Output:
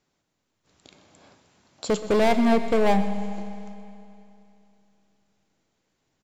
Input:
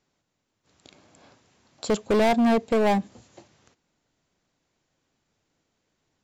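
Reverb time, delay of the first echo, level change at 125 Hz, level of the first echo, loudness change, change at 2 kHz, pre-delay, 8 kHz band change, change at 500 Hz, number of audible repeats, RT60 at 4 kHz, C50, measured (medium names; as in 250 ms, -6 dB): 2.8 s, 125 ms, +2.0 dB, -16.5 dB, -0.5 dB, +0.5 dB, 5 ms, +0.5 dB, +0.5 dB, 1, 2.7 s, 10.0 dB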